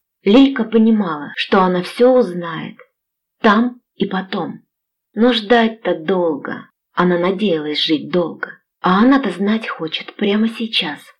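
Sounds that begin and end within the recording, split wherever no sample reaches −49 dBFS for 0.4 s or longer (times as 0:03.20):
0:03.40–0:04.60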